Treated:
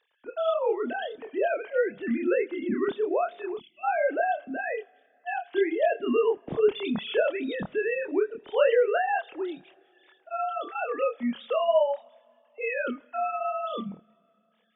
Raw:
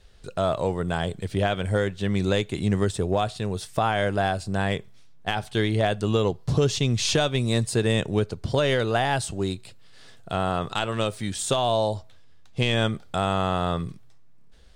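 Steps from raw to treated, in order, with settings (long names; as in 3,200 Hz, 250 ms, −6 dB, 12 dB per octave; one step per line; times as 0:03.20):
three sine waves on the formant tracks
coupled-rooms reverb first 0.37 s, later 3 s, from −18 dB, DRR 18 dB
gain on a spectral selection 0:03.57–0:03.84, 370–2,000 Hz −30 dB
multi-voice chorus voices 2, 0.87 Hz, delay 27 ms, depth 1.6 ms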